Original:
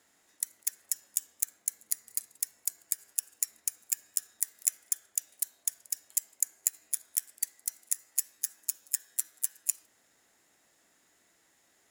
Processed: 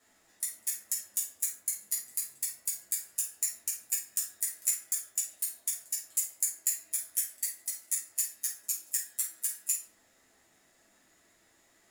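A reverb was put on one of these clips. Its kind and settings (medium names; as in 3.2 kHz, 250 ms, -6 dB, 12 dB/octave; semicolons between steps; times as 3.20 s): simulated room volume 390 m³, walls furnished, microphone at 6.4 m; trim -7 dB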